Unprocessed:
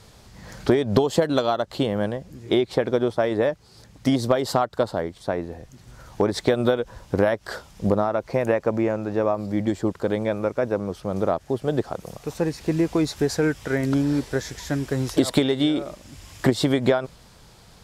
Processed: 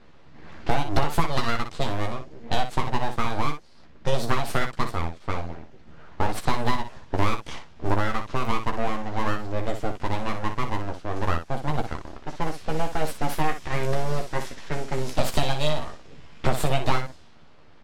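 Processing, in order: full-wave rectifier; level-controlled noise filter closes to 2.3 kHz, open at -19 dBFS; early reflections 13 ms -5.5 dB, 60 ms -8.5 dB; trim -1.5 dB

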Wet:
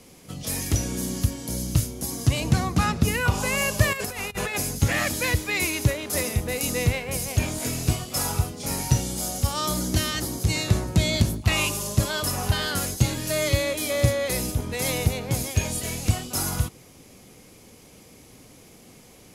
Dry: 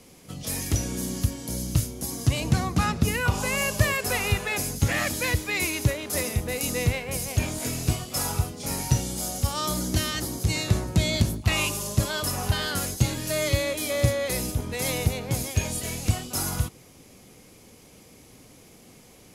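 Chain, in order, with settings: 3.93–4.55 s: compressor with a negative ratio -31 dBFS, ratio -0.5; trim +1.5 dB

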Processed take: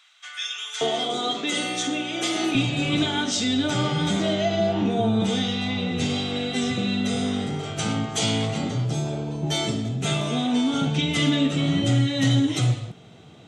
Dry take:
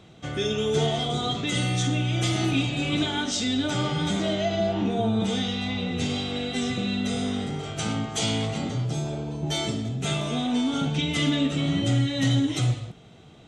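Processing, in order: high-pass 1.3 kHz 24 dB/octave, from 0.81 s 250 Hz, from 2.55 s 84 Hz; trim +2.5 dB

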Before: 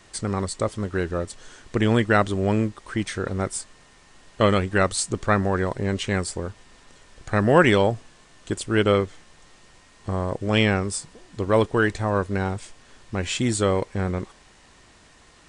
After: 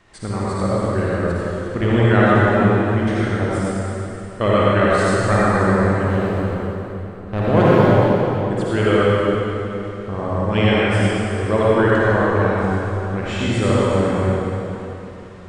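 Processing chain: 5.97–8.51 s: median filter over 25 samples; tone controls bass +1 dB, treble -12 dB; reverberation RT60 3.3 s, pre-delay 48 ms, DRR -8 dB; trim -2 dB

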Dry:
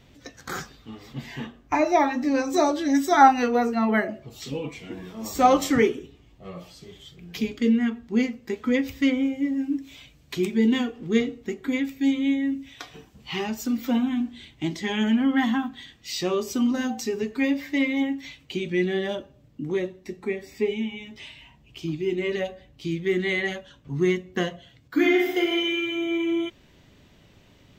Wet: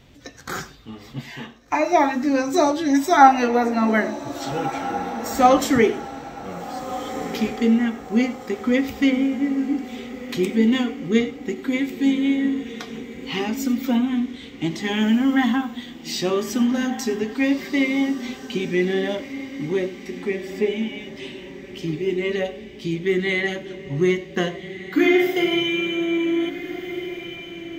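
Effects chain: 1.21–1.93 s: bass shelf 340 Hz -7.5 dB; echo that smears into a reverb 1607 ms, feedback 44%, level -12 dB; on a send at -17 dB: reverberation, pre-delay 48 ms; on the sum: trim +3 dB

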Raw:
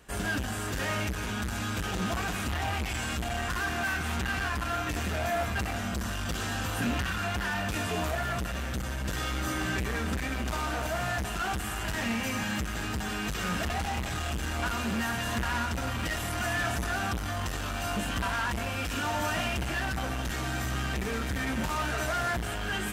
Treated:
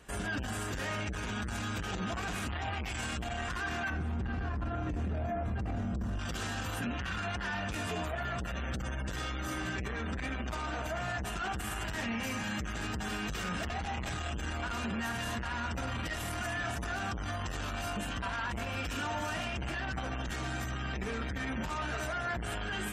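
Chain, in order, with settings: spectral gate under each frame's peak -30 dB strong; 3.90–6.19 s: tilt shelf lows +10 dB, about 900 Hz; peak limiter -28 dBFS, peak gain reduction 13.5 dB

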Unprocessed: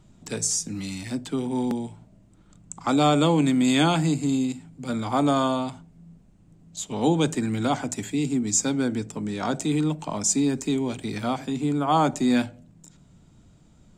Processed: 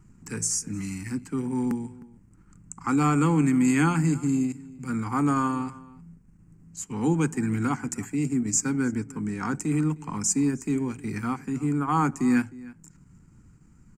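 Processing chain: static phaser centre 1.5 kHz, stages 4; transient shaper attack -2 dB, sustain -6 dB; echo from a far wall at 53 m, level -20 dB; trim +2 dB

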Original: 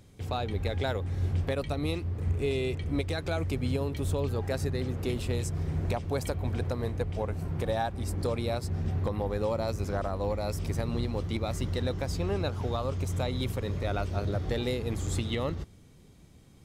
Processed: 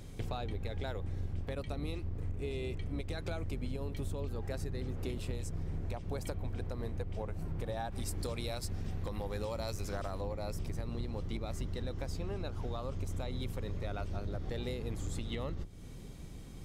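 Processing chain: octave divider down 2 oct, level +1 dB; 7.92–10.21 s: treble shelf 2 kHz +10.5 dB; compression 6:1, threshold -41 dBFS, peak gain reduction 19.5 dB; trim +5.5 dB

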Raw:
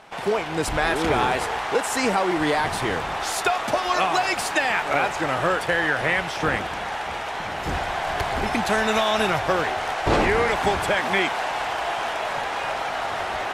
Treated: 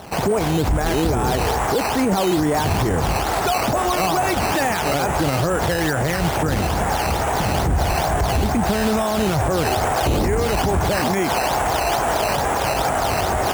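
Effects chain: high-pass 47 Hz 24 dB/octave; tilt EQ -4 dB/octave; peak limiter -20 dBFS, peak gain reduction 17.5 dB; decimation with a swept rate 9×, swing 100% 2.3 Hz; trim +8.5 dB

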